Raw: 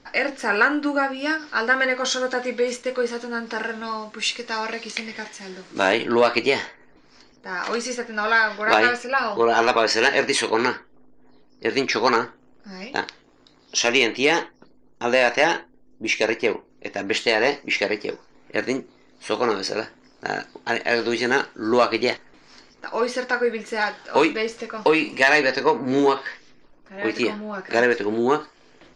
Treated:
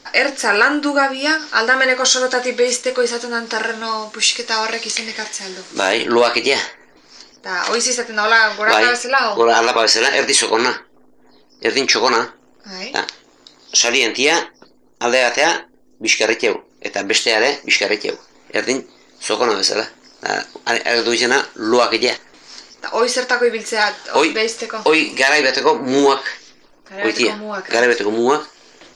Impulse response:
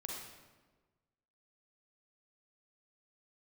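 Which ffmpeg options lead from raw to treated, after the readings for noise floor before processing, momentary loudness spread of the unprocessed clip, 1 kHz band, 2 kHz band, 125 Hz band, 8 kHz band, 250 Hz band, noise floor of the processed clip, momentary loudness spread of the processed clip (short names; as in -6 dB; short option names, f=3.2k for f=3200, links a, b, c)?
-55 dBFS, 13 LU, +5.0 dB, +5.5 dB, -0.5 dB, +13.0 dB, +3.5 dB, -51 dBFS, 11 LU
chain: -af "bass=f=250:g=-8,treble=f=4k:g=10,alimiter=level_in=8dB:limit=-1dB:release=50:level=0:latency=1,volume=-1dB"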